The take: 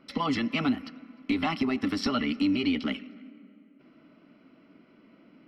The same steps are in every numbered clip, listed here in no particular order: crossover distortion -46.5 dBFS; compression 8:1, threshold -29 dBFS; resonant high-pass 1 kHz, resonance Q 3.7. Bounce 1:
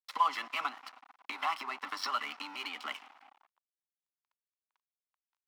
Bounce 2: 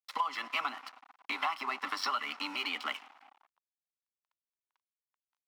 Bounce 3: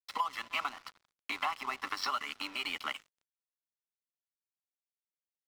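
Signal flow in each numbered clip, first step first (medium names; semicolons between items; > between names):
compression > crossover distortion > resonant high-pass; crossover distortion > resonant high-pass > compression; resonant high-pass > compression > crossover distortion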